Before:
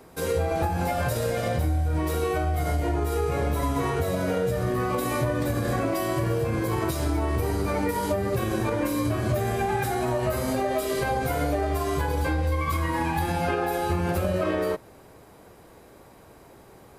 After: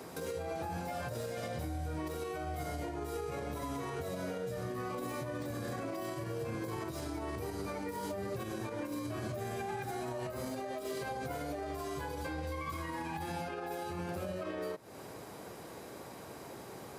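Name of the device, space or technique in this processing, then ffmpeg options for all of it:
broadcast voice chain: -af "highpass=110,deesser=0.75,acompressor=threshold=-35dB:ratio=3,equalizer=f=5.5k:t=o:w=1.2:g=4,alimiter=level_in=9dB:limit=-24dB:level=0:latency=1:release=293,volume=-9dB,volume=3dB"

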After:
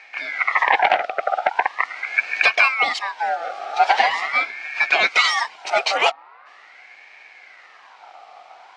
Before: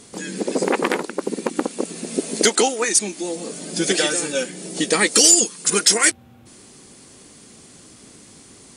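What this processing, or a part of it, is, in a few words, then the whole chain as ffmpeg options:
voice changer toy: -af "aeval=exprs='val(0)*sin(2*PI*1500*n/s+1500*0.35/0.42*sin(2*PI*0.42*n/s))':c=same,highpass=560,equalizer=f=740:t=q:w=4:g=10,equalizer=f=1.5k:t=q:w=4:g=-6,equalizer=f=2.2k:t=q:w=4:g=5,equalizer=f=3.4k:t=q:w=4:g=-5,lowpass=f=3.7k:w=0.5412,lowpass=f=3.7k:w=1.3066,volume=5dB"

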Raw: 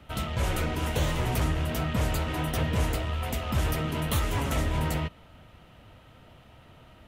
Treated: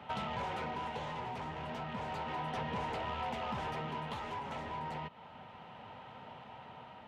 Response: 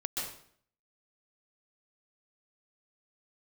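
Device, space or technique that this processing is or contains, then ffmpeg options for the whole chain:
AM radio: -af "highpass=180,lowpass=3.4k,superequalizer=6b=0.447:9b=2.82,acompressor=threshold=-37dB:ratio=5,asoftclip=type=tanh:threshold=-33dB,tremolo=f=0.32:d=0.38,volume=3.5dB"

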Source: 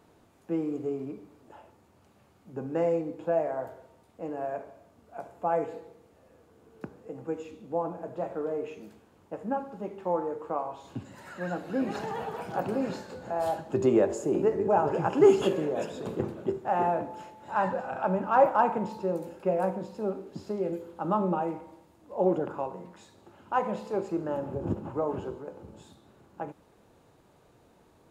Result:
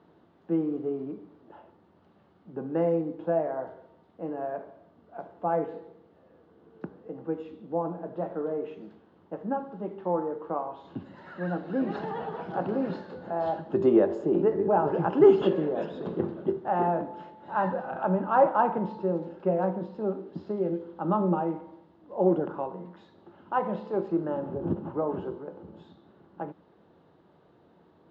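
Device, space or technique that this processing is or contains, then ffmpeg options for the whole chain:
guitar cabinet: -af "highpass=88,equalizer=f=120:t=q:w=4:g=-6,equalizer=f=170:t=q:w=4:g=6,equalizer=f=340:t=q:w=4:g=4,equalizer=f=2.4k:t=q:w=4:g=-9,lowpass=f=3.7k:w=0.5412,lowpass=f=3.7k:w=1.3066"

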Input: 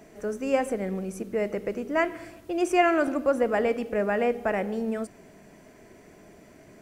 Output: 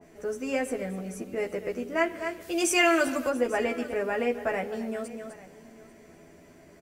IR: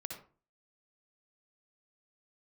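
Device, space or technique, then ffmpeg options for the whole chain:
ducked delay: -filter_complex "[0:a]asplit=3[a][b][c];[a]afade=t=out:st=2.4:d=0.02[d];[b]highshelf=f=2.2k:g=12,afade=t=in:st=2.4:d=0.02,afade=t=out:st=3.28:d=0.02[e];[c]afade=t=in:st=3.28:d=0.02[f];[d][e][f]amix=inputs=3:normalize=0,asplit=3[g][h][i];[h]adelay=253,volume=-6.5dB[j];[i]apad=whole_len=311666[k];[j][k]sidechaincompress=threshold=-36dB:ratio=8:attack=16:release=180[l];[g][l]amix=inputs=2:normalize=0,asplit=2[m][n];[n]adelay=12,volume=-2.5dB[o];[m][o]amix=inputs=2:normalize=0,aecho=1:1:842:0.106,adynamicequalizer=threshold=0.01:dfrequency=2000:dqfactor=0.7:tfrequency=2000:tqfactor=0.7:attack=5:release=100:ratio=0.375:range=2:mode=boostabove:tftype=highshelf,volume=-4.5dB"

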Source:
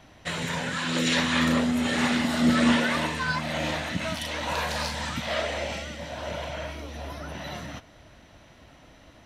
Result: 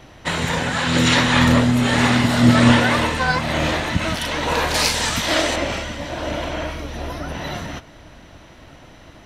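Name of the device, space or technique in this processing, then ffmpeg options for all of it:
octave pedal: -filter_complex "[0:a]asettb=1/sr,asplit=3[a][b][c];[a]atrim=end=4.744[d];[b]atrim=start=4.74:end=5.56,asetpts=PTS-STARTPTS,afade=t=in:d=0.004:c=qsin,afade=t=out:st=0.816:d=0.004:c=qsin,bass=f=250:g=-2,treble=f=4k:g=11[e];[c]atrim=start=5.556[f];[d][e]acrossfade=d=0.004:c1=hsin:c2=qsin[g];[g][f]acrossfade=d=0.004:c1=qsin:c2=hsin,asplit=2[h][i];[i]asetrate=22050,aresample=44100,atempo=2,volume=-4dB[j];[h][j]amix=inputs=2:normalize=0,volume=7dB"

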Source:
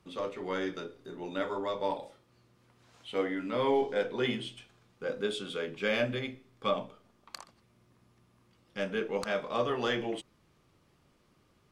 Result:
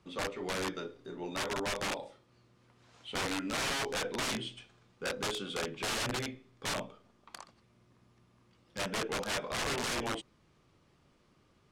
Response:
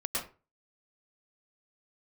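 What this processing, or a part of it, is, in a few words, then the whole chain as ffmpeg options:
overflowing digital effects unit: -af "aeval=exprs='(mod(25.1*val(0)+1,2)-1)/25.1':c=same,lowpass=8.8k"

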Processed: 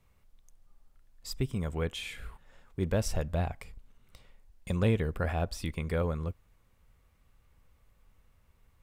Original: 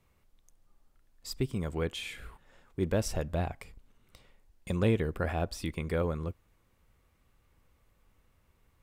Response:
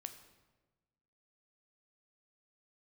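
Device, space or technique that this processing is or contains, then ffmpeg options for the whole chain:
low shelf boost with a cut just above: -filter_complex "[0:a]asettb=1/sr,asplit=3[a][b][c];[a]atrim=end=1.324[d];[b]atrim=start=1.32:end=1.96,asetpts=PTS-STARTPTS,afade=t=in:d=0.004:c=qsin,afade=t=out:st=0.636:d=0.004:c=qsin,bandreject=f=4.5k:w=7.3[e];[c]atrim=start=1.956[f];[d][e]acrossfade=d=0.004:c1=hsin:c2=qsin[g];[g][f]acrossfade=d=0.004:c1=qsin:c2=hsin,lowshelf=f=69:g=6,equalizer=f=330:t=o:w=0.54:g=-4.5"

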